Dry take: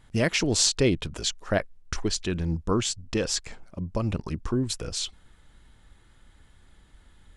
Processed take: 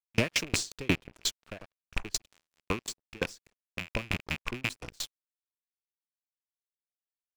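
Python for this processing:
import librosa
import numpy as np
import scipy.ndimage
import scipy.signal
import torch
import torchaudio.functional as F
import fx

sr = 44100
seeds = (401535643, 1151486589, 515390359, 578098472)

y = fx.rattle_buzz(x, sr, strikes_db=-34.0, level_db=-14.0)
y = fx.level_steps(y, sr, step_db=22, at=(2.26, 2.88))
y = fx.echo_bbd(y, sr, ms=73, stages=1024, feedback_pct=65, wet_db=-19)
y = np.sign(y) * np.maximum(np.abs(y) - 10.0 ** (-34.0 / 20.0), 0.0)
y = fx.tremolo_decay(y, sr, direction='decaying', hz=5.6, depth_db=36)
y = y * 10.0 ** (4.5 / 20.0)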